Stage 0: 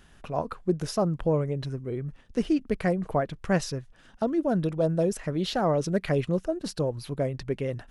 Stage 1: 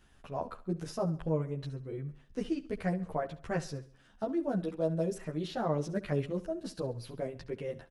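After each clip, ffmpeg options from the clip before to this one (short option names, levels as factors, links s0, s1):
-filter_complex "[0:a]acrossover=split=2000[s0][s1];[s1]alimiter=level_in=1.88:limit=0.0631:level=0:latency=1:release=138,volume=0.531[s2];[s0][s2]amix=inputs=2:normalize=0,aecho=1:1:68|136|204|272:0.141|0.0607|0.0261|0.0112,asplit=2[s3][s4];[s4]adelay=11.6,afreqshift=-0.48[s5];[s3][s5]amix=inputs=2:normalize=1,volume=0.596"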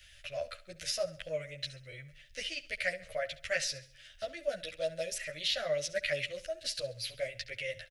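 -filter_complex "[0:a]firequalizer=gain_entry='entry(110,0);entry(180,-24);entry(400,-23);entry(580,4);entry(890,-28);entry(1300,-5);entry(2000,13);entry(4400,13);entry(7900,8)':delay=0.05:min_phase=1,acrossover=split=170|1900[s0][s1][s2];[s0]acompressor=threshold=0.00141:ratio=6[s3];[s3][s1][s2]amix=inputs=3:normalize=0,volume=1.26"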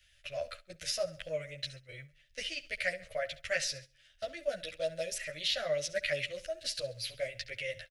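-af "agate=range=0.355:threshold=0.00398:ratio=16:detection=peak"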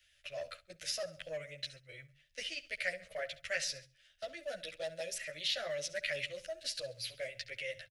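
-filter_complex "[0:a]lowshelf=f=150:g=-8.5,acrossover=split=180|1000[s0][s1][s2];[s0]aecho=1:1:101:0.447[s3];[s1]asoftclip=type=hard:threshold=0.0178[s4];[s3][s4][s2]amix=inputs=3:normalize=0,volume=0.75"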